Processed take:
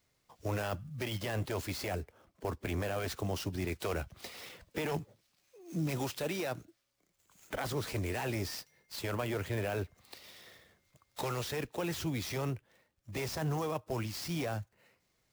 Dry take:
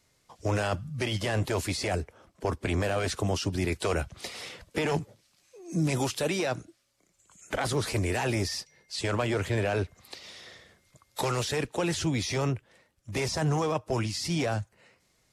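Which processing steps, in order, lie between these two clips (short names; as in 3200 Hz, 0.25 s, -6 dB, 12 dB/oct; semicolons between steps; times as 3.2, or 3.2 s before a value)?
clock jitter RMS 0.021 ms; gain -7 dB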